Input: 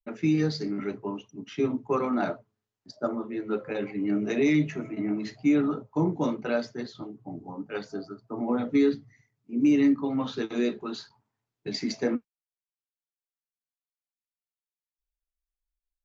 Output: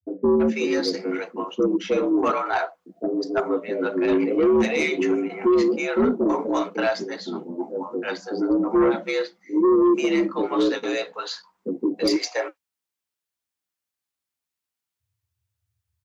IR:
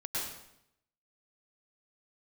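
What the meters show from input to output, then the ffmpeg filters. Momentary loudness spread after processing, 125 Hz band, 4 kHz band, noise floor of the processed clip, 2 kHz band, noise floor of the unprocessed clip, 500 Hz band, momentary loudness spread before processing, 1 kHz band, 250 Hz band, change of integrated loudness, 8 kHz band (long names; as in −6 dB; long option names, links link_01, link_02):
12 LU, −6.0 dB, +8.0 dB, below −85 dBFS, +8.5 dB, below −85 dBFS, +9.5 dB, 15 LU, +9.0 dB, +4.0 dB, +5.0 dB, can't be measured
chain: -filter_complex "[0:a]acrossover=split=470[link_01][link_02];[link_02]adelay=330[link_03];[link_01][link_03]amix=inputs=2:normalize=0,afreqshift=70,aeval=exprs='0.2*sin(PI/2*1.78*val(0)/0.2)':channel_layout=same"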